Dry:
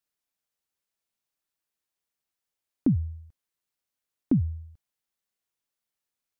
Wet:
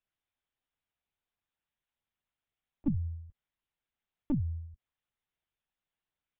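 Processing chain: compression 20:1, threshold -26 dBFS, peak gain reduction 9 dB; LPC vocoder at 8 kHz pitch kept

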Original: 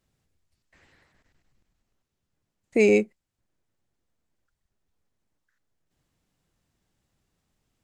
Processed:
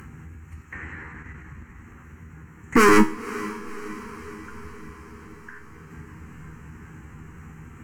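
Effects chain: local Wiener filter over 9 samples; high-pass 47 Hz 24 dB/octave; waveshaping leveller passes 3; in parallel at +3 dB: upward compressor, threshold -18 dBFS; on the sum: sine folder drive 5 dB, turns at 0 dBFS; static phaser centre 1.5 kHz, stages 4; feedback comb 79 Hz, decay 0.3 s, harmonics all, mix 80%; echo that smears into a reverb 518 ms, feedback 62%, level -16 dB; on a send at -21 dB: reverberation RT60 2.3 s, pre-delay 95 ms

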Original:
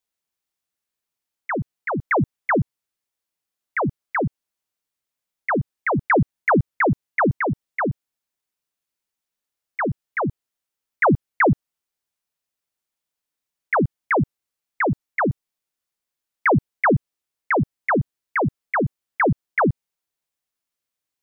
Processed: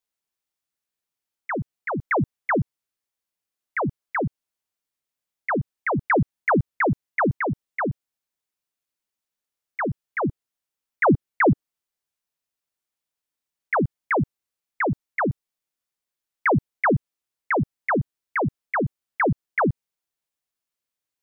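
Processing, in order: 10.04–13.78 s: dynamic bell 310 Hz, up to +4 dB, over -29 dBFS, Q 1.2; trim -2.5 dB

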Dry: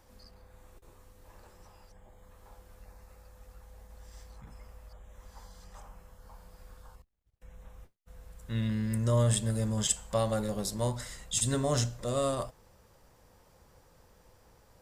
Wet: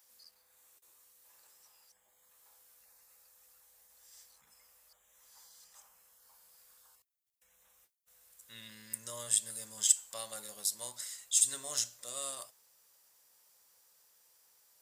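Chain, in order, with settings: differentiator; trim +3.5 dB

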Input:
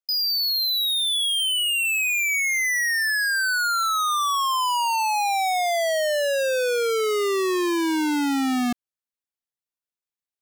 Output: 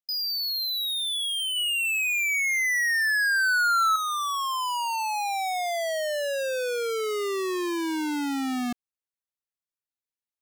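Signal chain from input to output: 1.56–3.96 s: peaking EQ 580 Hz +15 dB 2.3 oct; trim -5.5 dB

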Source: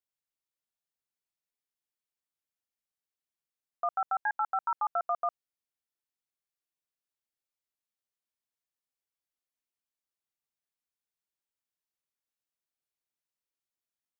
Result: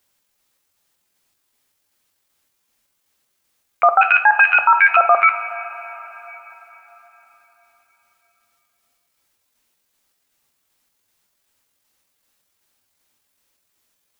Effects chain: pitch shift switched off and on +11 st, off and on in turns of 191 ms; two-slope reverb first 0.29 s, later 4.3 s, from -21 dB, DRR 8.5 dB; loudness maximiser +26.5 dB; trim -2.5 dB

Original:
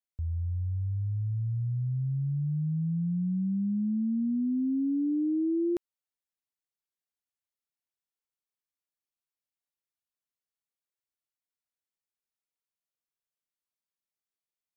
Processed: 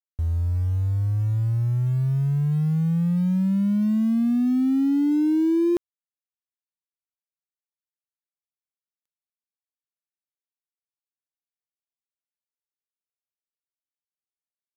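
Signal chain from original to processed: companding laws mixed up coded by mu; trim +6.5 dB

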